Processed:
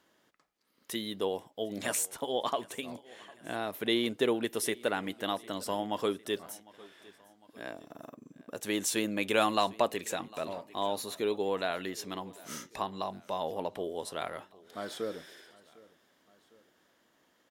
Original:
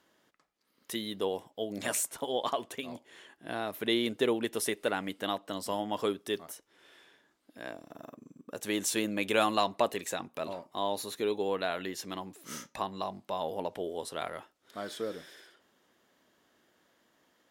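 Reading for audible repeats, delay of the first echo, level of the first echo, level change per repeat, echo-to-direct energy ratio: 2, 754 ms, −22.5 dB, −5.0 dB, −21.5 dB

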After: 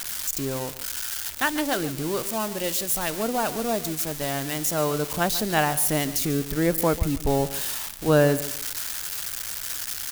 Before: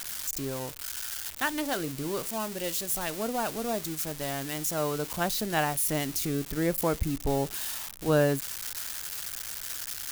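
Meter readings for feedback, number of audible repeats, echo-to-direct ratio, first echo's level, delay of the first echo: 26%, 2, −14.5 dB, −15.0 dB, 143 ms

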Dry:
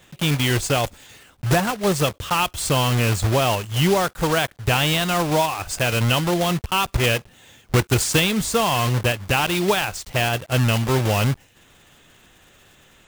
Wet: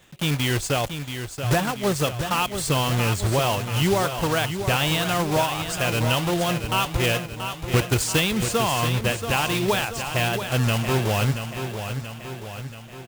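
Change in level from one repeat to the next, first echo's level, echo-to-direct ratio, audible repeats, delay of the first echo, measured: −5.0 dB, −8.5 dB, −7.0 dB, 5, 681 ms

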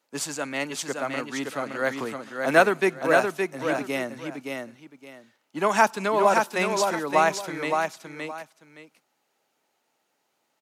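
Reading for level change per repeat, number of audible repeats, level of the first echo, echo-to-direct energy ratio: −12.5 dB, 2, −4.5 dB, −4.5 dB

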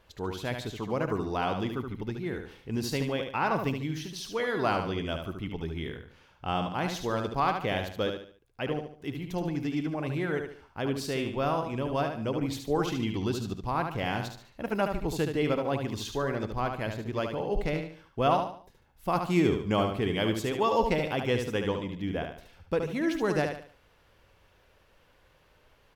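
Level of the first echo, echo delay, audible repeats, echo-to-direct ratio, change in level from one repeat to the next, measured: −6.0 dB, 73 ms, 4, −5.5 dB, −9.0 dB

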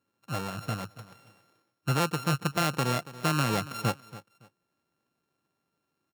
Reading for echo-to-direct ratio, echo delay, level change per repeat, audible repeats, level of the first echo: −17.0 dB, 281 ms, −12.5 dB, 2, −17.0 dB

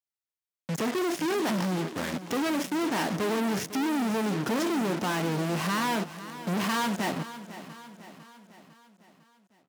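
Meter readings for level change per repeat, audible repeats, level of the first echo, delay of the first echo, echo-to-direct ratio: −5.5 dB, 4, −14.0 dB, 502 ms, −12.5 dB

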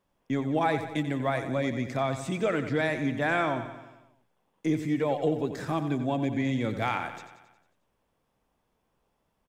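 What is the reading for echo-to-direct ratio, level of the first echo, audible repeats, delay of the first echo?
−8.5 dB, −10.5 dB, 6, 90 ms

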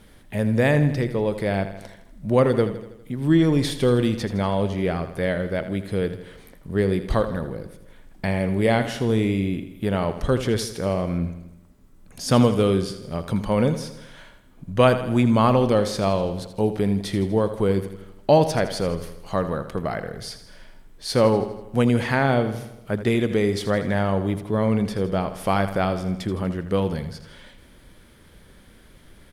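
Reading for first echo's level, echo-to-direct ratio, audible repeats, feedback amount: −12.0 dB, −10.5 dB, 5, 56%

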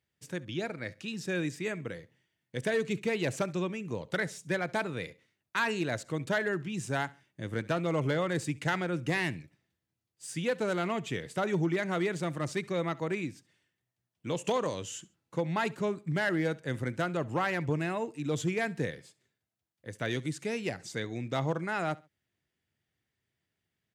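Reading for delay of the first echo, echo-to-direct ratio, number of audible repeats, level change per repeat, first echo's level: 68 ms, −21.5 dB, 2, −10.0 dB, −22.0 dB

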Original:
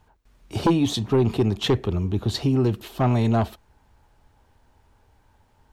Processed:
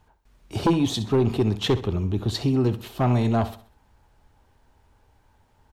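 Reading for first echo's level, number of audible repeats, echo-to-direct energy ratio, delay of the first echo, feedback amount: −14.0 dB, 3, −13.5 dB, 65 ms, 39%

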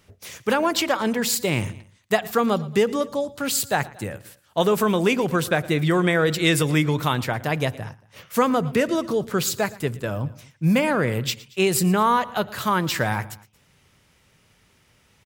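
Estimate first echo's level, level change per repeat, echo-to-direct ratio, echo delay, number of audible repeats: −20.5 dB, −5.0 dB, −19.5 dB, 115 ms, 2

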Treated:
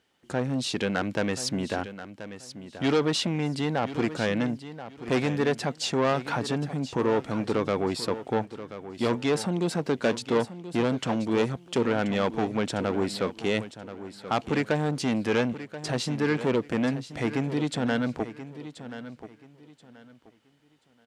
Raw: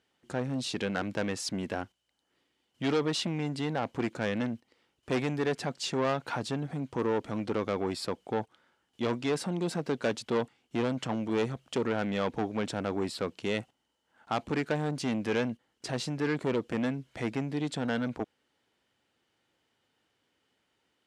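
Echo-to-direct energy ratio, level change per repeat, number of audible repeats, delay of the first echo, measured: −12.5 dB, −12.0 dB, 2, 1,031 ms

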